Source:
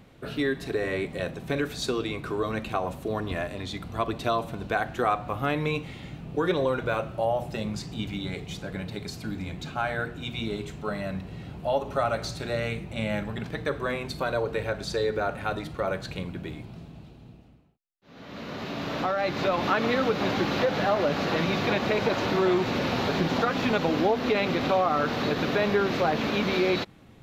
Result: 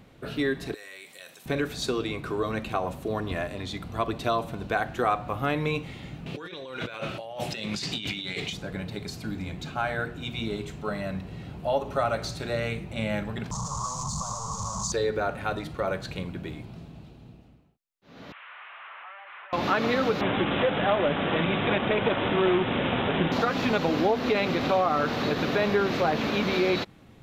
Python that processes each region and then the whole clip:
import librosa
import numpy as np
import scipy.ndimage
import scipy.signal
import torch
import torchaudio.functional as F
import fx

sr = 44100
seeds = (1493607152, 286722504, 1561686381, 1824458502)

y = fx.chain(x, sr, fx.differentiator(),
    fx.env_flatten(amount_pct=50), at=(0.74, 1.46))
y = fx.chain(y, sr, fx.weighting(curve='D'),
    fx.over_compress(threshold_db=-35.0, ratio=-1.0), at=(6.26, 8.53))
y = fx.chain(y, sr, fx.clip_1bit(),
    fx.curve_eq(hz=(200.0, 310.0, 660.0, 1100.0, 1600.0, 2600.0, 6800.0, 12000.0), db=(0, -26, -10, 10, -29, -29, 11, -26)), at=(13.51, 14.92))
y = fx.chain(y, sr, fx.delta_mod(bps=16000, step_db=-43.0),
    fx.highpass(hz=1100.0, slope=24), at=(18.32, 19.53))
y = fx.chain(y, sr, fx.quant_companded(bits=4),
    fx.resample_bad(factor=6, down='none', up='filtered'), at=(20.21, 23.32))